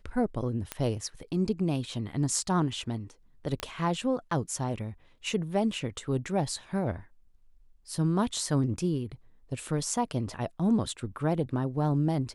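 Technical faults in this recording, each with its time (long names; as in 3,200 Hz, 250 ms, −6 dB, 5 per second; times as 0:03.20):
0:00.72: click −15 dBFS
0:03.60: click −16 dBFS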